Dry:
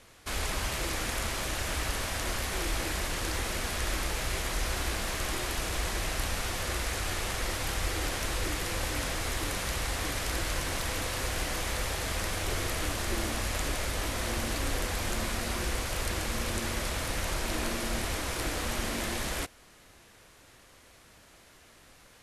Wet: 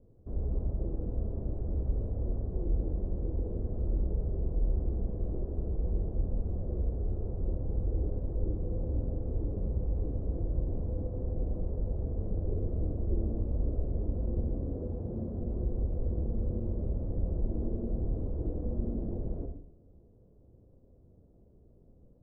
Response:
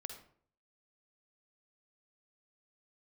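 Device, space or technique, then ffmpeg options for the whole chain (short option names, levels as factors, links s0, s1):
next room: -filter_complex "[0:a]asettb=1/sr,asplit=3[s0][s1][s2];[s0]atrim=end=14.534[s3];[s1]atrim=start=14.53:end=15.4,asetpts=PTS-STARTPTS,afade=t=in:d=0.004:c=qsin,afade=t=out:st=0.866:d=0.004:c=qsin,highpass=78[s4];[s2]atrim=start=15.396[s5];[s3][s4]acrossfade=d=0.004:c1=hsin:c2=qsin[s6];[s6][s5]acrossfade=d=0.004:c1=qsin:c2=hsin,lowpass=f=430:w=0.5412,lowpass=f=430:w=1.3066,equalizer=f=310:t=o:w=0.85:g=-4.5[s7];[1:a]atrim=start_sample=2205[s8];[s7][s8]afir=irnorm=-1:irlink=0,volume=2.24"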